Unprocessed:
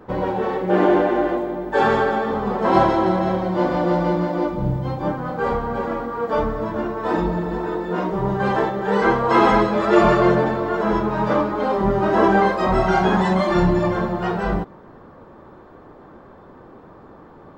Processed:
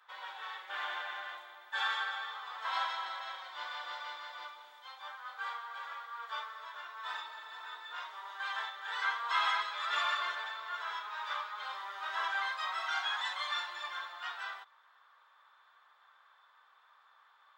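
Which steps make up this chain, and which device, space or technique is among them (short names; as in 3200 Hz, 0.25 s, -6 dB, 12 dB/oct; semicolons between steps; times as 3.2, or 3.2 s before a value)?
headphones lying on a table (HPF 1200 Hz 24 dB/oct; bell 3500 Hz +11 dB 0.29 oct); gain -9 dB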